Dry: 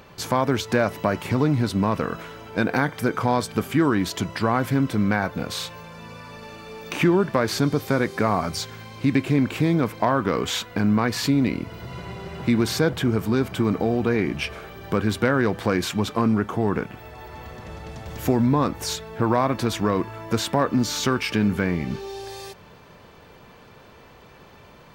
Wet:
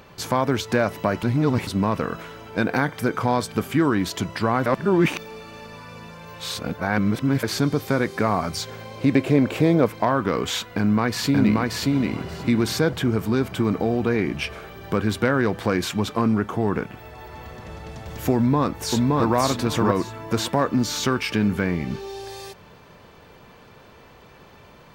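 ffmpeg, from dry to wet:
ffmpeg -i in.wav -filter_complex "[0:a]asettb=1/sr,asplit=3[link_01][link_02][link_03];[link_01]atrim=end=8.674[link_04];[link_02]atrim=start=8.67:end=9.86,asetpts=PTS-STARTPTS,afade=type=in:duration=0.004:curve=qsin,afade=type=out:start_time=1.186:duration=0.004:curve=qsin,equalizer=frequency=550:width=1.5:gain=10[link_05];[link_03]atrim=start=9.856[link_06];[link_04][link_05]acrossfade=duration=0.004:curve1=hsin:curve2=qsin[link_07];[link_07][link_06]acrossfade=duration=0.004:curve1=qsin:curve2=hsin,asplit=2[link_08][link_09];[link_09]afade=type=in:start_time=10.61:duration=0.01,afade=type=out:start_time=11.76:duration=0.01,aecho=0:1:580|1160|1740:0.841395|0.126209|0.0189314[link_10];[link_08][link_10]amix=inputs=2:normalize=0,asplit=2[link_11][link_12];[link_12]afade=type=in:start_time=18.35:duration=0.01,afade=type=out:start_time=19.34:duration=0.01,aecho=0:1:570|1140|1710:0.891251|0.17825|0.03565[link_13];[link_11][link_13]amix=inputs=2:normalize=0,asplit=5[link_14][link_15][link_16][link_17][link_18];[link_14]atrim=end=1.232[link_19];[link_15]atrim=start=1.228:end=1.672,asetpts=PTS-STARTPTS,areverse[link_20];[link_16]atrim=start=1.668:end=4.662[link_21];[link_17]atrim=start=4.658:end=7.432,asetpts=PTS-STARTPTS,areverse[link_22];[link_18]atrim=start=7.428[link_23];[link_19][link_20]acrossfade=duration=0.004:curve1=hsin:curve2=hsin[link_24];[link_24][link_21]acrossfade=duration=0.004:curve1=hsin:curve2=hsin[link_25];[link_25][link_22]acrossfade=duration=0.004:curve1=hsin:curve2=hsin[link_26];[link_26][link_23]acrossfade=duration=0.004:curve1=hsin:curve2=hsin" out.wav

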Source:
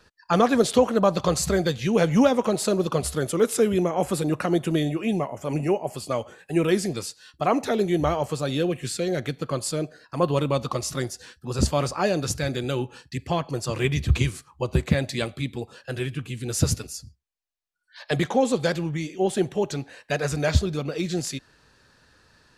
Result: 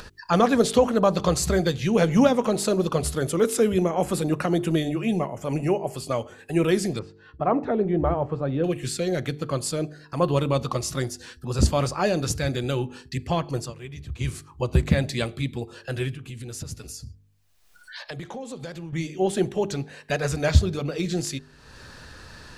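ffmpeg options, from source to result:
ffmpeg -i in.wav -filter_complex "[0:a]asettb=1/sr,asplit=3[link_01][link_02][link_03];[link_01]atrim=end=6.994[link_04];[link_02]atrim=start=6.99:end=8.64,asetpts=PTS-STARTPTS,afade=type=in:duration=0.004:curve=qsin,afade=type=out:start_time=1.646:duration=0.004:curve=qsin,lowpass=1300[link_05];[link_03]atrim=start=8.636[link_06];[link_04][link_05]acrossfade=duration=0.004:curve1=hsin:curve2=qsin[link_07];[link_07][link_06]acrossfade=duration=0.004:curve1=qsin:curve2=hsin,asettb=1/sr,asplit=3[link_08][link_09][link_10];[link_08]atrim=end=16.134[link_11];[link_09]atrim=start=16.13:end=18.93,asetpts=PTS-STARTPTS,afade=type=in:duration=0.004:curve=qsin,afade=type=out:start_time=2.796:duration=0.004:curve=qsin,acompressor=threshold=-41dB:ratio=2.5:attack=3.2:release=140:knee=1:detection=peak[link_12];[link_10]atrim=start=18.926[link_13];[link_11][link_12]acrossfade=duration=0.004:curve1=hsin:curve2=qsin[link_14];[link_14][link_13]acrossfade=duration=0.004:curve1=qsin:curve2=hsin,asplit=3[link_15][link_16][link_17];[link_15]atrim=end=13.74,asetpts=PTS-STARTPTS,afade=type=out:start_time=13.58:duration=0.16:silence=0.11885[link_18];[link_16]atrim=start=13.74:end=14.17,asetpts=PTS-STARTPTS,volume=-18.5dB[link_19];[link_17]atrim=start=14.17,asetpts=PTS-STARTPTS,afade=type=in:duration=0.16:silence=0.11885[link_20];[link_18][link_19][link_20]concat=n=3:v=0:a=1,lowshelf=frequency=82:gain=8.5,bandreject=frequency=49.89:width_type=h:width=4,bandreject=frequency=99.78:width_type=h:width=4,bandreject=frequency=149.67:width_type=h:width=4,bandreject=frequency=199.56:width_type=h:width=4,bandreject=frequency=249.45:width_type=h:width=4,bandreject=frequency=299.34:width_type=h:width=4,bandreject=frequency=349.23:width_type=h:width=4,bandreject=frequency=399.12:width_type=h:width=4,bandreject=frequency=449.01:width_type=h:width=4,acompressor=mode=upward:threshold=-31dB:ratio=2.5" out.wav

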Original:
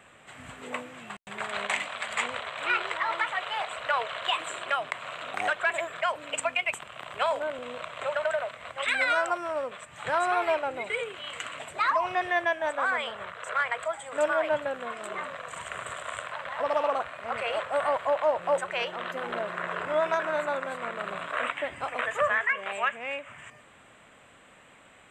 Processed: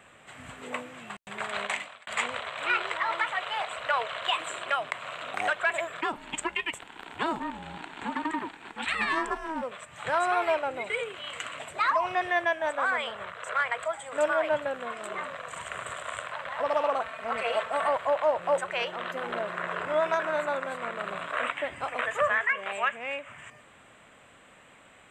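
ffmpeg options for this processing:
ffmpeg -i in.wav -filter_complex "[0:a]asplit=3[link_01][link_02][link_03];[link_01]afade=type=out:start_time=6.01:duration=0.02[link_04];[link_02]aeval=exprs='val(0)*sin(2*PI*320*n/s)':channel_layout=same,afade=type=in:start_time=6.01:duration=0.02,afade=type=out:start_time=9.61:duration=0.02[link_05];[link_03]afade=type=in:start_time=9.61:duration=0.02[link_06];[link_04][link_05][link_06]amix=inputs=3:normalize=0,asettb=1/sr,asplit=3[link_07][link_08][link_09];[link_07]atrim=end=17.014[link_10];[link_08]atrim=start=17.01:end=17.88,asetpts=PTS-STARTPTS,afade=type=in:duration=0.004:curve=qsin,afade=type=out:start_time=0.866:duration=0.004:curve=qsin,aecho=1:1:4.5:0.62,atrim=end_sample=38367[link_11];[link_09]atrim=start=17.876[link_12];[link_10][link_11]acrossfade=duration=0.004:curve1=hsin:curve2=qsin[link_13];[link_13][link_12]acrossfade=duration=0.004:curve1=qsin:curve2=hsin,asplit=2[link_14][link_15];[link_14]atrim=end=2.07,asetpts=PTS-STARTPTS,afade=type=out:start_time=1.61:duration=0.46[link_16];[link_15]atrim=start=2.07,asetpts=PTS-STARTPTS,afade=type=in:duration=0.004:curve=hsin[link_17];[link_16][link_17]concat=n=2:v=0:a=1" out.wav

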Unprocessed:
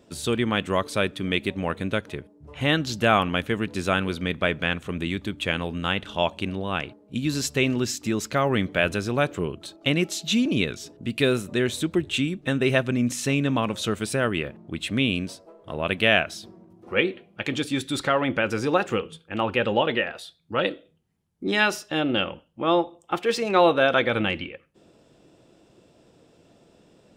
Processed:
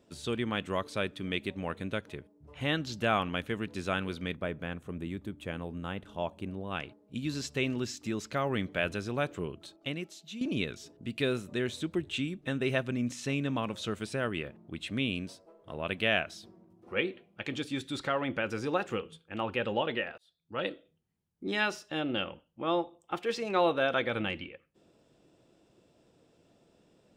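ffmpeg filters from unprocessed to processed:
ffmpeg -i in.wav -filter_complex "[0:a]asplit=3[link_01][link_02][link_03];[link_01]afade=type=out:start_time=4.35:duration=0.02[link_04];[link_02]equalizer=frequency=3500:width=0.48:gain=-11,afade=type=in:start_time=4.35:duration=0.02,afade=type=out:start_time=6.7:duration=0.02[link_05];[link_03]afade=type=in:start_time=6.7:duration=0.02[link_06];[link_04][link_05][link_06]amix=inputs=3:normalize=0,asplit=3[link_07][link_08][link_09];[link_07]atrim=end=10.41,asetpts=PTS-STARTPTS,afade=type=out:start_time=9.64:duration=0.77:curve=qua:silence=0.251189[link_10];[link_08]atrim=start=10.41:end=20.18,asetpts=PTS-STARTPTS,afade=type=in:duration=0.004:curve=hsin:silence=0.251189,afade=type=out:start_time=9.766:duration=0.004:curve=hsin[link_11];[link_09]atrim=start=20.18,asetpts=PTS-STARTPTS,afade=type=in:duration=0.5[link_12];[link_10][link_11][link_12]concat=n=3:v=0:a=1,acrossover=split=7100[link_13][link_14];[link_14]acompressor=threshold=-47dB:ratio=4:attack=1:release=60[link_15];[link_13][link_15]amix=inputs=2:normalize=0,volume=-8.5dB" out.wav

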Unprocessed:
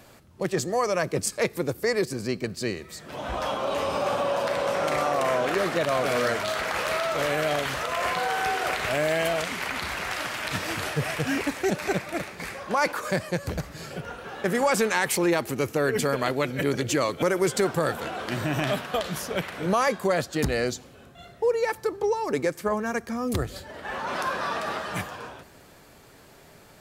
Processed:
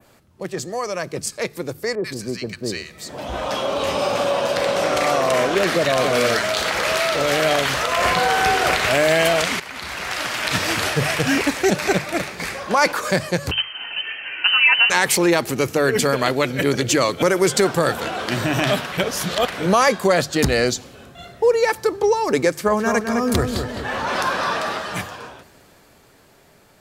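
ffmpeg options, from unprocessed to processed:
ffmpeg -i in.wav -filter_complex "[0:a]asettb=1/sr,asplit=3[link_01][link_02][link_03];[link_01]atrim=end=1.954[link_04];[link_02]atrim=start=1.95:end=7.4,asetpts=PTS-STARTPTS,afade=type=in:duration=0.004:curve=qsin,afade=type=out:start_time=5.446:duration=0.004:curve=qsin,acrossover=split=1100[link_05][link_06];[link_06]adelay=90[link_07];[link_05][link_07]amix=inputs=2:normalize=0,atrim=end_sample=240345[link_08];[link_03]atrim=start=7.396[link_09];[link_04][link_08]acrossfade=duration=0.004:curve1=hsin:curve2=qsin[link_10];[link_10][link_09]acrossfade=duration=0.004:curve1=qsin:curve2=hsin,asettb=1/sr,asplit=3[link_11][link_12][link_13];[link_11]atrim=end=7.984[link_14];[link_12]atrim=start=7.98:end=8.78,asetpts=PTS-STARTPTS,afade=type=in:duration=0.004:curve=qsin,afade=type=out:start_time=0.796:duration=0.004:curve=qsin,lowshelf=frequency=220:gain=8.5[link_15];[link_13]atrim=start=8.776[link_16];[link_14][link_15]acrossfade=duration=0.004:curve1=hsin:curve2=qsin[link_17];[link_17][link_16]acrossfade=duration=0.004:curve1=qsin:curve2=hsin,asettb=1/sr,asplit=3[link_18][link_19][link_20];[link_18]atrim=end=13.514[link_21];[link_19]atrim=start=13.51:end=14.9,asetpts=PTS-STARTPTS,afade=type=in:duration=0.004:curve=qsin,afade=type=out:start_time=1.386:duration=0.004:curve=qsin,lowpass=frequency=2700:width_type=q:width=0.5098,lowpass=frequency=2700:width_type=q:width=0.6013,lowpass=frequency=2700:width_type=q:width=0.9,lowpass=frequency=2700:width_type=q:width=2.563,afreqshift=-3200[link_22];[link_20]atrim=start=14.896[link_23];[link_21][link_22]acrossfade=duration=0.004:curve1=hsin:curve2=qsin[link_24];[link_24][link_23]acrossfade=duration=0.004:curve1=qsin:curve2=hsin,asettb=1/sr,asplit=3[link_25][link_26][link_27];[link_25]atrim=end=22.564[link_28];[link_26]atrim=start=22.56:end=24.68,asetpts=PTS-STARTPTS,afade=type=in:duration=0.004:curve=qsin,afade=type=out:start_time=2.116:duration=0.004:curve=qsin,asplit=2[link_29][link_30];[link_30]adelay=210,lowpass=frequency=3800:poles=1,volume=-6dB,asplit=2[link_31][link_32];[link_32]adelay=210,lowpass=frequency=3800:poles=1,volume=0.5,asplit=2[link_33][link_34];[link_34]adelay=210,lowpass=frequency=3800:poles=1,volume=0.5,asplit=2[link_35][link_36];[link_36]adelay=210,lowpass=frequency=3800:poles=1,volume=0.5,asplit=2[link_37][link_38];[link_38]adelay=210,lowpass=frequency=3800:poles=1,volume=0.5,asplit=2[link_39][link_40];[link_40]adelay=210,lowpass=frequency=3800:poles=1,volume=0.5[link_41];[link_29][link_31][link_33][link_35][link_37][link_39][link_41]amix=inputs=7:normalize=0,atrim=end_sample=93492[link_42];[link_27]atrim=start=24.676[link_43];[link_28][link_42]acrossfade=duration=0.004:curve1=hsin:curve2=qsin[link_44];[link_44][link_43]acrossfade=duration=0.004:curve1=qsin:curve2=hsin,asplit=4[link_45][link_46][link_47][link_48];[link_45]atrim=end=9.6,asetpts=PTS-STARTPTS,afade=type=out:start_time=9.596:duration=0.004:curve=hsin:silence=0.158489[link_49];[link_46]atrim=start=9.6:end=18.922,asetpts=PTS-STARTPTS,afade=type=in:duration=0.99:silence=0.158489[link_50];[link_47]atrim=start=18.918:end=19.472,asetpts=PTS-STARTPTS,areverse[link_51];[link_48]atrim=start=19.468[link_52];[link_49][link_50]concat=n=2:v=0:a=1[link_53];[link_53][link_51]acrossfade=duration=0.004:curve1=hsin:curve2=hsin[link_54];[link_54][link_52]acrossfade=duration=0.004:curve1=hsin:curve2=hsin,bandreject=frequency=50:width_type=h:width=6,bandreject=frequency=100:width_type=h:width=6,bandreject=frequency=150:width_type=h:width=6,dynaudnorm=framelen=640:gausssize=9:maxgain=11.5dB,adynamicequalizer=threshold=0.0141:dfrequency=4900:dqfactor=0.71:tfrequency=4900:tqfactor=0.71:attack=5:release=100:ratio=0.375:range=2:mode=boostabove:tftype=bell,volume=-1.5dB" out.wav

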